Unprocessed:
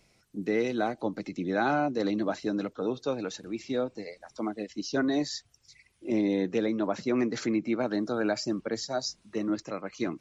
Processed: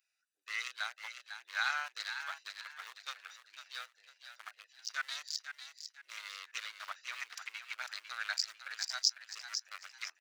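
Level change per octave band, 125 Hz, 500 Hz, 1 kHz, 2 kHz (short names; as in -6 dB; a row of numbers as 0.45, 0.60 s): under -40 dB, -34.0 dB, -10.5 dB, -0.5 dB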